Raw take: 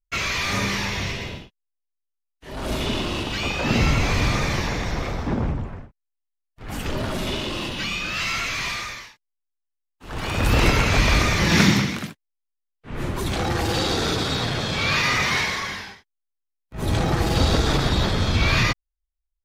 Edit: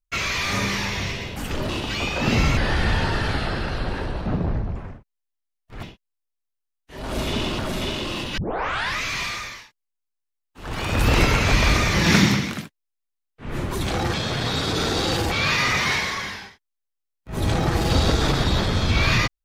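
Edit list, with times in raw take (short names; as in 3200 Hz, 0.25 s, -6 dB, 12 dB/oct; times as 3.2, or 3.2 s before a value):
1.36–3.12 swap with 6.71–7.04
4–5.64 speed 75%
7.83 tape start 0.66 s
13.59–14.77 reverse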